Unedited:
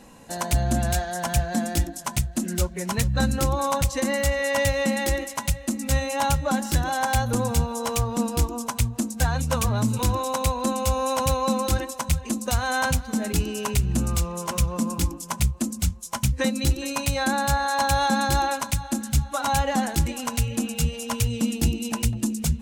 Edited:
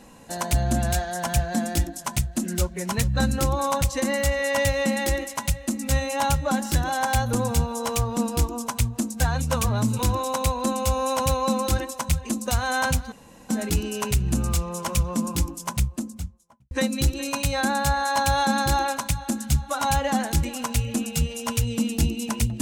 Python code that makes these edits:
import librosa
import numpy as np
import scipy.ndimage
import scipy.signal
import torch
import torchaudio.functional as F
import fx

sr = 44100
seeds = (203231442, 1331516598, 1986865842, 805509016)

y = fx.studio_fade_out(x, sr, start_s=15.22, length_s=1.12)
y = fx.edit(y, sr, fx.insert_room_tone(at_s=13.12, length_s=0.37), tone=tone)